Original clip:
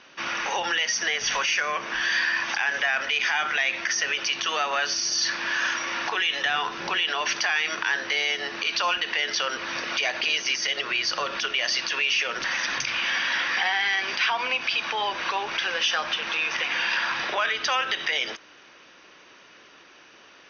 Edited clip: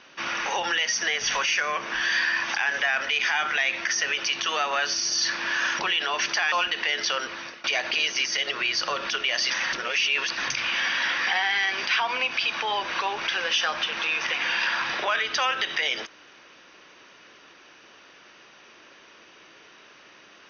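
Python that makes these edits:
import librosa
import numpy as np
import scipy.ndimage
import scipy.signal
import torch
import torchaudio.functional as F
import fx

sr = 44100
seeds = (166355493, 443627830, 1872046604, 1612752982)

y = fx.edit(x, sr, fx.cut(start_s=5.79, length_s=1.07),
    fx.cut(start_s=7.59, length_s=1.23),
    fx.fade_out_to(start_s=9.47, length_s=0.47, floor_db=-22.5),
    fx.reverse_span(start_s=11.8, length_s=0.87), tone=tone)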